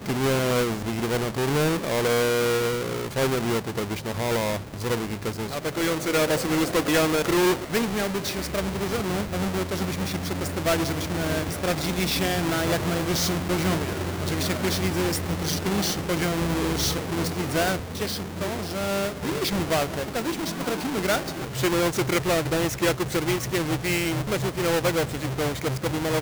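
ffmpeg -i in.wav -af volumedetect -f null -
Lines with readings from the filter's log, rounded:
mean_volume: -25.2 dB
max_volume: -17.0 dB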